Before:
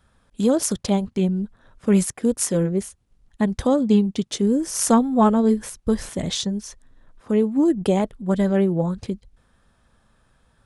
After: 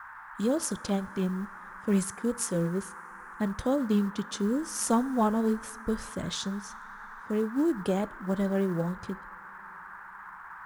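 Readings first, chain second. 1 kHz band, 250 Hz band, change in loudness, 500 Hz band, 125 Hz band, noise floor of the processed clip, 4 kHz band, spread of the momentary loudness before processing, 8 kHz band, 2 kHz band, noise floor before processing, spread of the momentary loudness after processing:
-6.5 dB, -8.5 dB, -8.5 dB, -8.5 dB, -8.5 dB, -46 dBFS, -8.5 dB, 10 LU, -8.5 dB, -0.5 dB, -63 dBFS, 18 LU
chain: band noise 860–1700 Hz -37 dBFS; two-slope reverb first 0.39 s, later 5 s, from -18 dB, DRR 17.5 dB; short-mantissa float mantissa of 4-bit; trim -8.5 dB

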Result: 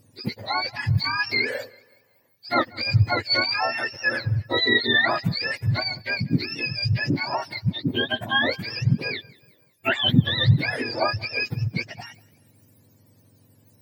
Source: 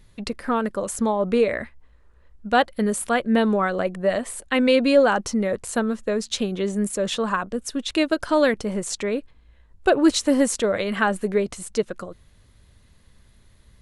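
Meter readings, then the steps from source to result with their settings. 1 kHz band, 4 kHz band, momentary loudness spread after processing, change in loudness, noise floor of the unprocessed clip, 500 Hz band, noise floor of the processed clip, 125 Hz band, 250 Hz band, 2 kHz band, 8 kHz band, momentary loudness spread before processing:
-3.0 dB, +7.0 dB, 9 LU, -1.0 dB, -55 dBFS, -10.0 dB, -60 dBFS, +13.0 dB, -6.5 dB, +4.5 dB, under -20 dB, 9 LU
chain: spectrum inverted on a logarithmic axis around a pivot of 1 kHz; modulated delay 187 ms, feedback 40%, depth 53 cents, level -24 dB

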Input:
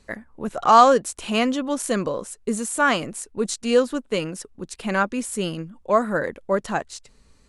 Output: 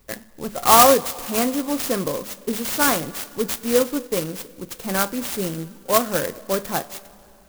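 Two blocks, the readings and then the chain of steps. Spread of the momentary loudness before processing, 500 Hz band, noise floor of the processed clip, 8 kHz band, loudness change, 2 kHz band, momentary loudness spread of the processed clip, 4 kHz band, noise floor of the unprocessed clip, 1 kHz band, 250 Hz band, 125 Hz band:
16 LU, 0.0 dB, -50 dBFS, +6.5 dB, +1.5 dB, -1.5 dB, 18 LU, +4.0 dB, -57 dBFS, -1.0 dB, -0.5 dB, +0.5 dB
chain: treble shelf 8.2 kHz +7.5 dB; two-slope reverb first 0.21 s, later 2.8 s, from -19 dB, DRR 9 dB; sampling jitter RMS 0.099 ms

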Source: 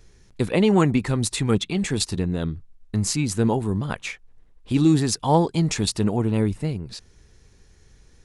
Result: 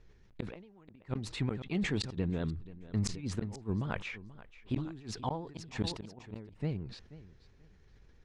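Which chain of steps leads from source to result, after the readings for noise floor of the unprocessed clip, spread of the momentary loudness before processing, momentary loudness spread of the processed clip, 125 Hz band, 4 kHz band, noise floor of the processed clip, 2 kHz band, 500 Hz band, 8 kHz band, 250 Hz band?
-55 dBFS, 13 LU, 17 LU, -13.0 dB, -13.5 dB, -61 dBFS, -10.5 dB, -17.0 dB, -19.5 dB, -15.5 dB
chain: vibrato 9.6 Hz 67 cents; inverted gate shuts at -12 dBFS, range -34 dB; low-pass 3.3 kHz 12 dB/octave; on a send: feedback delay 483 ms, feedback 22%, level -17.5 dB; on the sum: decay stretcher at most 76 dB/s; trim -8.5 dB

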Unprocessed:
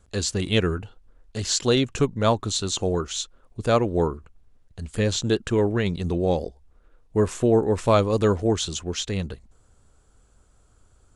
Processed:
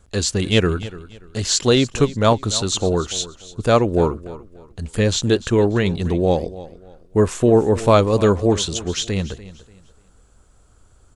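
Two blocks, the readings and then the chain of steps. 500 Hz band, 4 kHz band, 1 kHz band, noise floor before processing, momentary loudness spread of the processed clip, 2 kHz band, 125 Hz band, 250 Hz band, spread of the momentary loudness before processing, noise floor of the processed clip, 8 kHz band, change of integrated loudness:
+5.0 dB, +5.0 dB, +5.0 dB, -59 dBFS, 15 LU, +5.0 dB, +5.0 dB, +5.0 dB, 12 LU, -53 dBFS, +5.0 dB, +5.0 dB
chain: feedback delay 292 ms, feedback 29%, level -17 dB; trim +5 dB

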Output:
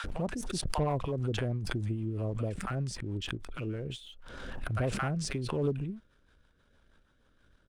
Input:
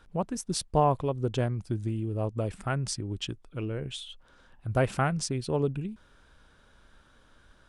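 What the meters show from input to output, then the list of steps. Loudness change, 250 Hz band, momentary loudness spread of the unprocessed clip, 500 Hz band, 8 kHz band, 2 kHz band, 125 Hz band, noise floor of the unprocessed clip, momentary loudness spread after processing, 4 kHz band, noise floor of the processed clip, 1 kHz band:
-4.0 dB, -3.0 dB, 11 LU, -5.0 dB, -5.5 dB, -1.5 dB, -2.5 dB, -61 dBFS, 10 LU, -3.0 dB, -68 dBFS, -8.0 dB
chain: treble shelf 3.6 kHz -5.5 dB; bands offset in time highs, lows 40 ms, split 960 Hz; waveshaping leveller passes 1; rotary cabinet horn 6.3 Hz; swell ahead of each attack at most 34 dB/s; trim -5.5 dB

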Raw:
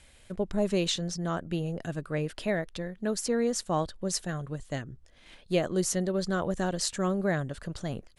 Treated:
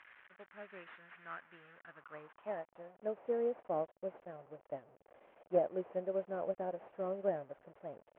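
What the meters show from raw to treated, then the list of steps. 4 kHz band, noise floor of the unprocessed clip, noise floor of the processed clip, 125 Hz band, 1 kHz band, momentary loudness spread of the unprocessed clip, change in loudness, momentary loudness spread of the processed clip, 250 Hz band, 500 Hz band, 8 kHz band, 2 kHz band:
under -30 dB, -57 dBFS, -73 dBFS, -22.5 dB, -8.5 dB, 9 LU, -9.0 dB, 18 LU, -17.5 dB, -6.5 dB, under -40 dB, -15.0 dB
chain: one-bit delta coder 16 kbps, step -35 dBFS; band-pass sweep 1.6 kHz -> 600 Hz, 1.67–3.08 s; upward expansion 1.5:1, over -49 dBFS; trim +1 dB

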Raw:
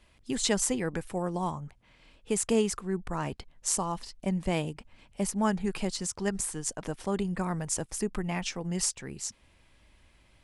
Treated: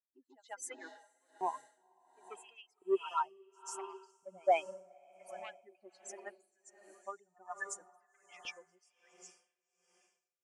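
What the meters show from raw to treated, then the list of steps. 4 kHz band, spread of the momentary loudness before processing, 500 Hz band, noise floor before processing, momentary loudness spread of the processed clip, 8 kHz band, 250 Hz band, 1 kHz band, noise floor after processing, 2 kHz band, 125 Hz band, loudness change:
-16.5 dB, 9 LU, -7.0 dB, -63 dBFS, 24 LU, -18.5 dB, -21.0 dB, -2.5 dB, under -85 dBFS, -8.0 dB, under -40 dB, -8.5 dB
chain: expander on every frequency bin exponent 3; treble shelf 4.1 kHz +5.5 dB; wah-wah 2 Hz 320–1600 Hz, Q 3.1; in parallel at +1 dB: compression, threshold -57 dBFS, peak gain reduction 22 dB; on the sum: pre-echo 138 ms -17.5 dB; saturation -30.5 dBFS, distortion -21 dB; LFO high-pass saw up 0.71 Hz 400–3600 Hz; on a send: echo that smears into a reverb 484 ms, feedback 42%, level -12.5 dB; on the sum: logarithmic tremolo 1.3 Hz, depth 24 dB; trim +13.5 dB

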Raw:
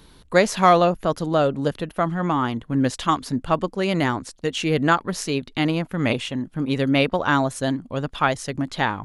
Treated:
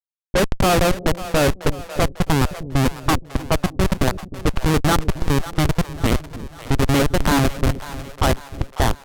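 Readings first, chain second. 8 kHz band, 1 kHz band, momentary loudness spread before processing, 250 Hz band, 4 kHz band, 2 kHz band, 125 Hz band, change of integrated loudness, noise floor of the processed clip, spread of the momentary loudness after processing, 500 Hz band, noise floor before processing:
+6.0 dB, -1.5 dB, 8 LU, +0.5 dB, +2.5 dB, 0.0 dB, +5.5 dB, +1.5 dB, -45 dBFS, 7 LU, 0.0 dB, -53 dBFS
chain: Schmitt trigger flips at -17.5 dBFS; level-controlled noise filter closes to 360 Hz, open at -21.5 dBFS; two-band feedback delay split 480 Hz, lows 308 ms, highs 547 ms, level -14 dB; trim +7 dB

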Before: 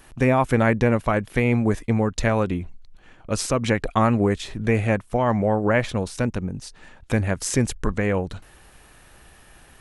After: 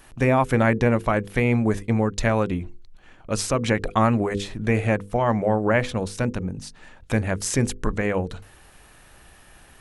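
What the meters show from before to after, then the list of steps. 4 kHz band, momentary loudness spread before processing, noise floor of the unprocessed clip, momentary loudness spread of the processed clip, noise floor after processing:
0.0 dB, 10 LU, -51 dBFS, 10 LU, -51 dBFS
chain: hum notches 50/100/150/200/250/300/350/400/450/500 Hz

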